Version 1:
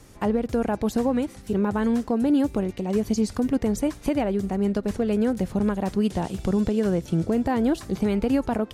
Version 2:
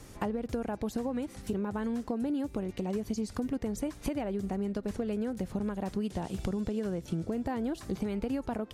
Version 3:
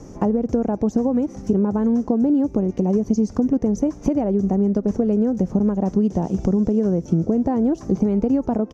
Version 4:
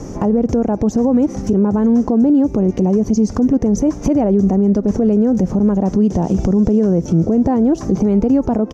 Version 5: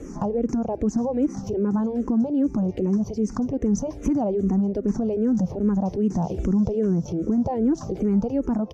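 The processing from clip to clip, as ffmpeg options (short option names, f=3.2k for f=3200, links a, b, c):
-af "acompressor=threshold=-30dB:ratio=6"
-af "firequalizer=gain_entry='entry(120,0);entry(170,7);entry(770,2);entry(1600,-9);entry(4000,-17);entry(6000,2);entry(8700,-21)':delay=0.05:min_phase=1,volume=8dB"
-af "alimiter=level_in=16.5dB:limit=-1dB:release=50:level=0:latency=1,volume=-6dB"
-filter_complex "[0:a]asplit=2[a][b];[b]afreqshift=-2.5[c];[a][c]amix=inputs=2:normalize=1,volume=-5.5dB"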